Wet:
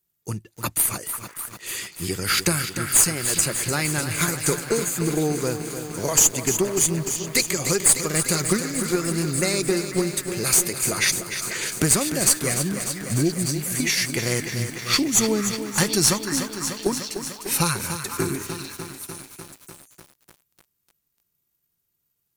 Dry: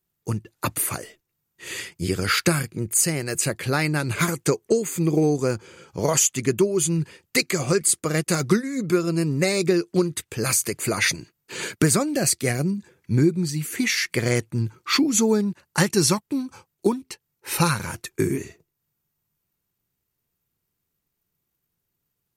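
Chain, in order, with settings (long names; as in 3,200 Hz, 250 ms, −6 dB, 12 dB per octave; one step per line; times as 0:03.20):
high-shelf EQ 3,700 Hz +8.5 dB
harmonic generator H 4 −15 dB, 6 −29 dB, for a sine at 1 dBFS
on a send: echo through a band-pass that steps 494 ms, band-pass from 1,400 Hz, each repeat 1.4 octaves, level −6.5 dB
on the sum: feedback echo at a low word length 298 ms, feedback 80%, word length 6 bits, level −9 dB
level −3.5 dB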